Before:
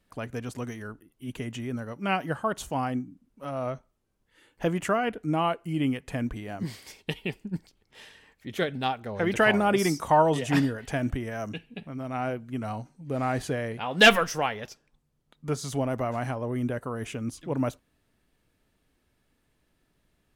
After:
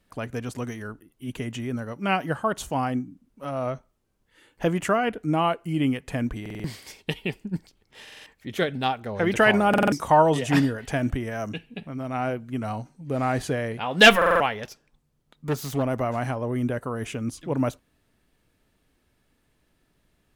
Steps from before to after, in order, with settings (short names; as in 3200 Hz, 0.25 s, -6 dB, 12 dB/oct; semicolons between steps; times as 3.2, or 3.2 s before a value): 14.63–15.83 self-modulated delay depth 0.21 ms; stuck buffer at 6.41/8.03/9.69/14.17, samples 2048, times 4; gain +3 dB